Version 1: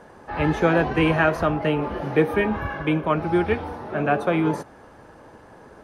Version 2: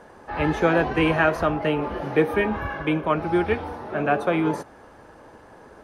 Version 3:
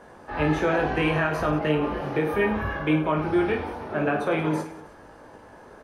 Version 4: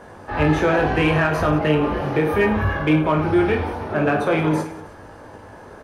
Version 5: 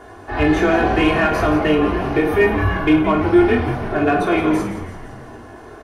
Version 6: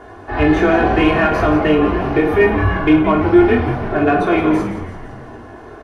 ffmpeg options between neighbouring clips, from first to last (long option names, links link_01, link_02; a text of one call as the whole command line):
ffmpeg -i in.wav -af "equalizer=frequency=140:width=0.95:gain=-3.5" out.wav
ffmpeg -i in.wav -filter_complex "[0:a]alimiter=limit=-13.5dB:level=0:latency=1,asplit=2[link_01][link_02];[link_02]aecho=0:1:20|52|103.2|185.1|316.2:0.631|0.398|0.251|0.158|0.1[link_03];[link_01][link_03]amix=inputs=2:normalize=0,volume=-2dB" out.wav
ffmpeg -i in.wav -filter_complex "[0:a]equalizer=frequency=93:width=1.8:gain=7.5,asplit=2[link_01][link_02];[link_02]asoftclip=type=hard:threshold=-25.5dB,volume=-10dB[link_03];[link_01][link_03]amix=inputs=2:normalize=0,volume=3.5dB" out.wav
ffmpeg -i in.wav -filter_complex "[0:a]aecho=1:1:2.8:0.82,asplit=2[link_01][link_02];[link_02]asplit=7[link_03][link_04][link_05][link_06][link_07][link_08][link_09];[link_03]adelay=169,afreqshift=-110,volume=-12dB[link_10];[link_04]adelay=338,afreqshift=-220,volume=-16.2dB[link_11];[link_05]adelay=507,afreqshift=-330,volume=-20.3dB[link_12];[link_06]adelay=676,afreqshift=-440,volume=-24.5dB[link_13];[link_07]adelay=845,afreqshift=-550,volume=-28.6dB[link_14];[link_08]adelay=1014,afreqshift=-660,volume=-32.8dB[link_15];[link_09]adelay=1183,afreqshift=-770,volume=-36.9dB[link_16];[link_10][link_11][link_12][link_13][link_14][link_15][link_16]amix=inputs=7:normalize=0[link_17];[link_01][link_17]amix=inputs=2:normalize=0" out.wav
ffmpeg -i in.wav -af "lowpass=frequency=3300:poles=1,volume=2.5dB" out.wav